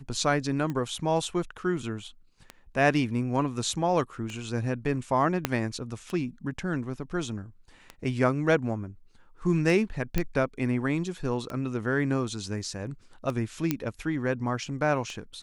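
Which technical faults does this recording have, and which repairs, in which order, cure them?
scratch tick 33 1/3 rpm −21 dBFS
0:05.45: click −8 dBFS
0:10.18: click −12 dBFS
0:13.71: click −11 dBFS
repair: click removal

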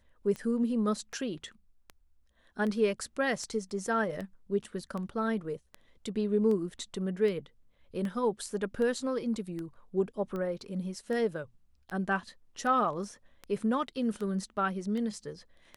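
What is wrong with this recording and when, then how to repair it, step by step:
scratch tick 78 rpm −26 dBFS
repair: click removal

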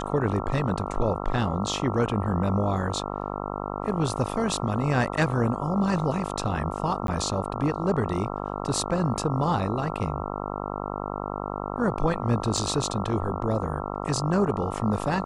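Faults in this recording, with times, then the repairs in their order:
mains buzz 50 Hz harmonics 27 −32 dBFS
0:07.07–0:07.08: drop-out 12 ms
0:12.57: drop-out 4.2 ms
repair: hum removal 50 Hz, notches 27
repair the gap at 0:07.07, 12 ms
repair the gap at 0:12.57, 4.2 ms

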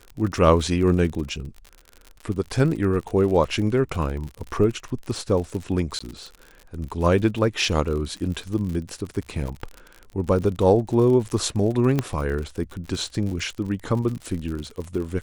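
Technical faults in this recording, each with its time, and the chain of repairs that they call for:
surface crackle 54 per second −30 dBFS
0:05.99–0:06.00: drop-out 15 ms
0:11.99: click −9 dBFS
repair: click removal
repair the gap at 0:05.99, 15 ms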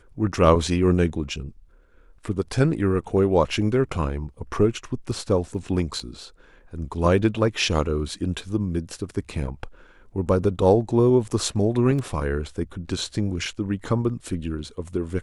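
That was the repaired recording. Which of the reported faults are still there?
0:11.99: click

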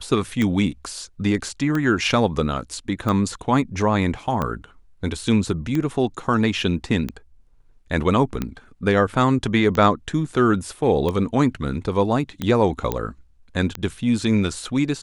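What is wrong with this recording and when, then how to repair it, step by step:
scratch tick 45 rpm −12 dBFS
0:12.92: click −9 dBFS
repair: click removal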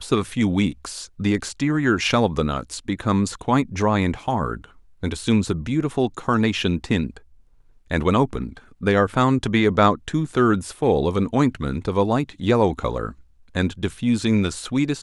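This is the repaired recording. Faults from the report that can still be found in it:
none of them is left

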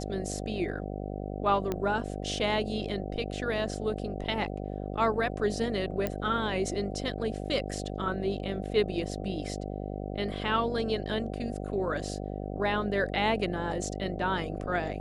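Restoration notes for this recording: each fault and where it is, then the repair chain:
mains buzz 50 Hz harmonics 15 −36 dBFS
0:01.72: click −17 dBFS
0:06.07: click −16 dBFS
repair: click removal
hum removal 50 Hz, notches 15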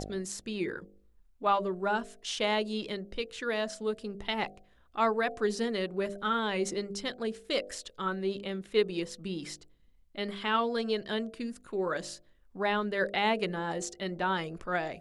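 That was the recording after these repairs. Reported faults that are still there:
0:06.07: click

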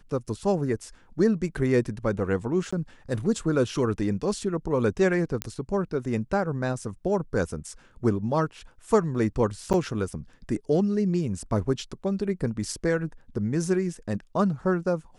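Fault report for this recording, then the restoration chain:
0:02.71–0:02.73: drop-out 15 ms
0:05.42: click −11 dBFS
0:09.73–0:09.74: drop-out 8.2 ms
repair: click removal
repair the gap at 0:02.71, 15 ms
repair the gap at 0:09.73, 8.2 ms

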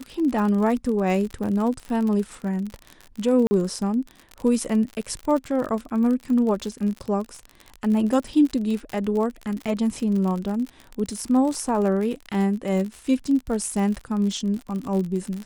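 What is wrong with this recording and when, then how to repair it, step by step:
surface crackle 52 per second −28 dBFS
0:03.47–0:03.51: drop-out 40 ms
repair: click removal
repair the gap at 0:03.47, 40 ms

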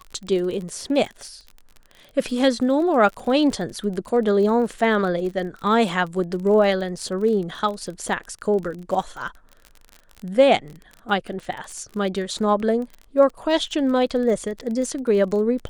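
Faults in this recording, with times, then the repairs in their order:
surface crackle 35 per second −30 dBFS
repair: click removal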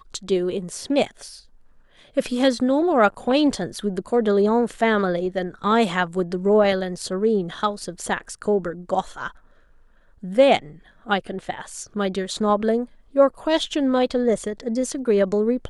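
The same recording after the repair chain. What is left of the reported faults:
none of them is left

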